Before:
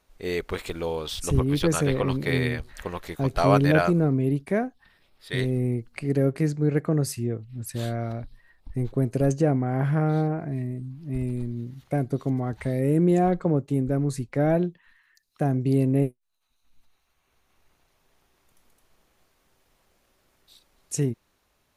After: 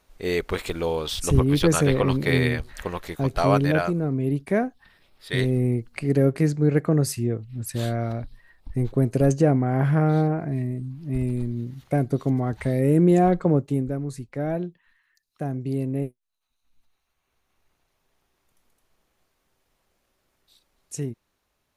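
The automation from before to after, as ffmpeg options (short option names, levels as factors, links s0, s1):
-af "volume=3.35,afade=t=out:st=2.67:d=1.34:silence=0.421697,afade=t=in:st=4.01:d=0.64:silence=0.446684,afade=t=out:st=13.59:d=0.4:silence=0.398107"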